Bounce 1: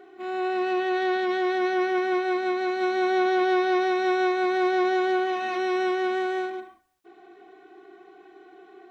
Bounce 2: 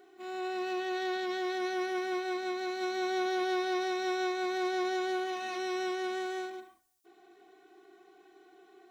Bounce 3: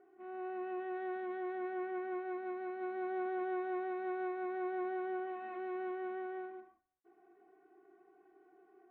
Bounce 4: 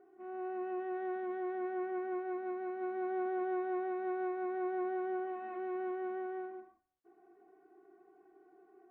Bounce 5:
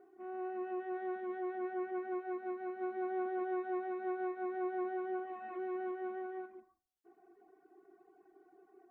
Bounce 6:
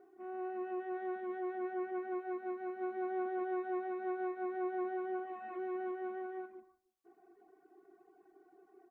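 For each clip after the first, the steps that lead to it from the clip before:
tone controls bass 0 dB, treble +14 dB; gain -9 dB
Bessel low-pass 1400 Hz, order 6; gain -5.5 dB
high shelf 2200 Hz -10 dB; gain +2.5 dB
reverb removal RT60 0.74 s; gain +1 dB
outdoor echo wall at 52 m, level -28 dB

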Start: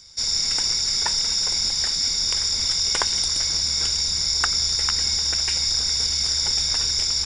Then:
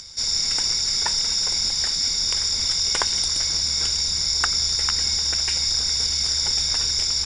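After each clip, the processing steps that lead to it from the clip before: upward compressor, threshold -33 dBFS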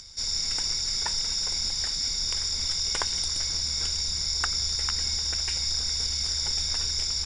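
low shelf 64 Hz +10 dB; gain -6 dB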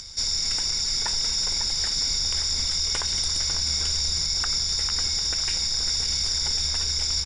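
limiter -22 dBFS, peak gain reduction 11 dB; outdoor echo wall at 94 m, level -7 dB; gain +6 dB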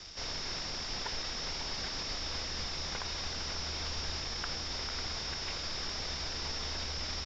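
CVSD 32 kbps; gain -7 dB

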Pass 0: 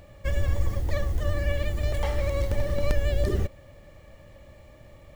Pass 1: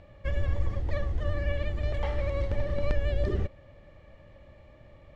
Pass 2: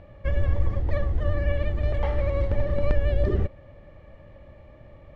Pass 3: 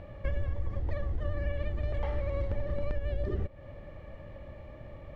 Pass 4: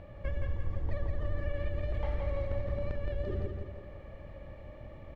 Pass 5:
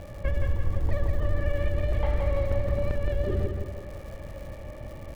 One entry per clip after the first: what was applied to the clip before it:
LPF 3500 Hz 12 dB/oct; gain -3 dB
high shelf 3100 Hz -11 dB; gain +5 dB
compressor 6:1, threshold -30 dBFS, peak gain reduction 15 dB; gain +2 dB
feedback echo 0.169 s, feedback 46%, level -4.5 dB; gain -3 dB
crackle 230/s -49 dBFS; gain +7.5 dB

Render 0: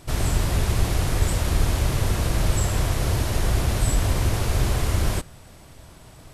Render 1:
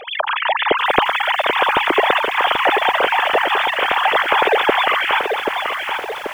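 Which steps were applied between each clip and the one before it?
sine-wave speech; lo-fi delay 0.784 s, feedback 55%, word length 7-bit, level -5 dB; gain +2.5 dB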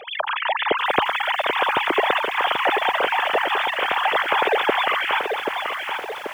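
HPF 80 Hz 24 dB/oct; gain -4.5 dB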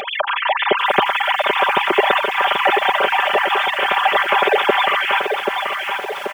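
comb 5.1 ms, depth 92%; upward compressor, threshold -22 dBFS; gain +1.5 dB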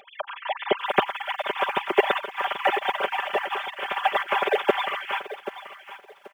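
upward expander 2.5:1, over -28 dBFS; gain -2.5 dB

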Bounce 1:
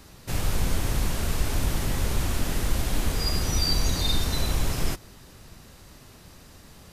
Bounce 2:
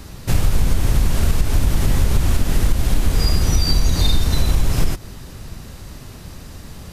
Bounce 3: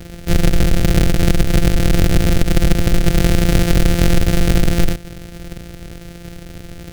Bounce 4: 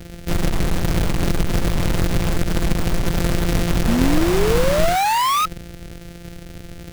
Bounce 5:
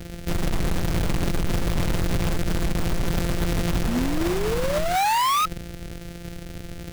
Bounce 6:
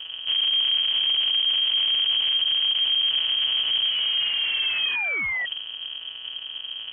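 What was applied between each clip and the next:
low shelf 210 Hz +7.5 dB; compressor, threshold -19 dBFS, peak gain reduction 10 dB; gain +8.5 dB
sample sorter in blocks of 256 samples; bell 1000 Hz -15 dB 0.57 oct; gain +2.5 dB
painted sound rise, 3.87–5.46, 220–1300 Hz -13 dBFS; in parallel at -5 dB: wrapped overs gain 10.5 dB; on the sum: gain -6.5 dB
limiter -16 dBFS, peak gain reduction 10 dB
soft clip -19.5 dBFS, distortion -18 dB; air absorption 480 m; inverted band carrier 3200 Hz

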